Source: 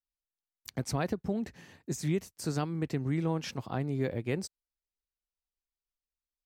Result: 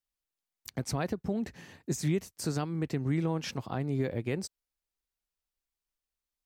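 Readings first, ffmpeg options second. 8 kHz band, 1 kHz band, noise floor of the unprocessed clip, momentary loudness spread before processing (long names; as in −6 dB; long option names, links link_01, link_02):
+2.0 dB, −0.5 dB, below −85 dBFS, 10 LU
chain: -af "alimiter=limit=-23dB:level=0:latency=1:release=261,volume=3dB"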